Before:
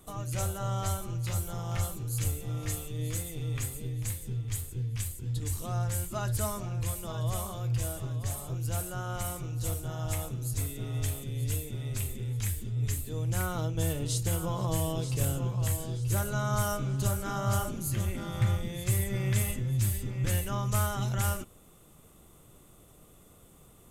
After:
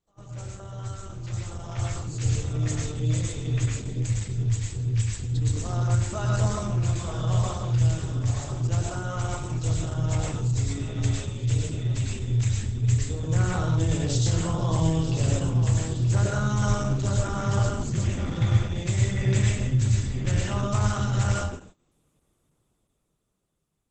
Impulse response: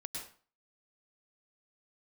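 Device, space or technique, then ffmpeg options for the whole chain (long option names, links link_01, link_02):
speakerphone in a meeting room: -filter_complex "[1:a]atrim=start_sample=2205[link_01];[0:a][link_01]afir=irnorm=-1:irlink=0,dynaudnorm=framelen=380:gausssize=9:maxgain=13dB,agate=range=-17dB:threshold=-40dB:ratio=16:detection=peak,volume=-5dB" -ar 48000 -c:a libopus -b:a 12k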